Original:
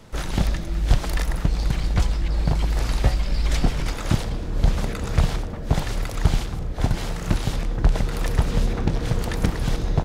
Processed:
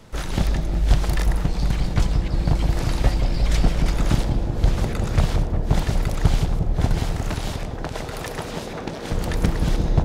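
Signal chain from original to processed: 6.99–9.12 Bessel high-pass 360 Hz, order 2; analogue delay 0.178 s, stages 1024, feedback 80%, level -5.5 dB

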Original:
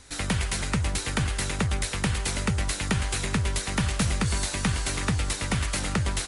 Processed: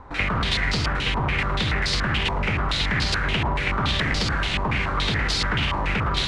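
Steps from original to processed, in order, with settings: reverb RT60 1.1 s, pre-delay 47 ms, DRR 4 dB; wavefolder -22.5 dBFS; flutter echo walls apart 7.9 m, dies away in 0.23 s; limiter -25.5 dBFS, peak gain reduction 5 dB; stepped low-pass 7 Hz 990–4600 Hz; gain +7.5 dB

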